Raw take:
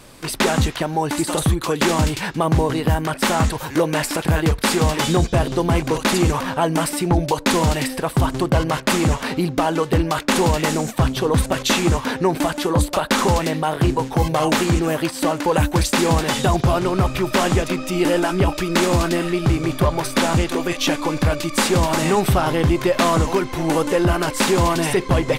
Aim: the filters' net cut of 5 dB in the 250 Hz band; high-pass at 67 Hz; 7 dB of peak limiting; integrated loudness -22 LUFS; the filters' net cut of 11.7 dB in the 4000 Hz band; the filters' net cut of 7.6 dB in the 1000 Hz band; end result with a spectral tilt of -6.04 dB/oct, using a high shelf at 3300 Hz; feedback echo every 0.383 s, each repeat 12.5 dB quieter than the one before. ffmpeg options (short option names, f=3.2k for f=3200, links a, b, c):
-af "highpass=67,equalizer=f=250:t=o:g=-7,equalizer=f=1k:t=o:g=-8,highshelf=f=3.3k:g=-9,equalizer=f=4k:t=o:g=-8.5,alimiter=limit=-16dB:level=0:latency=1,aecho=1:1:383|766|1149:0.237|0.0569|0.0137,volume=4dB"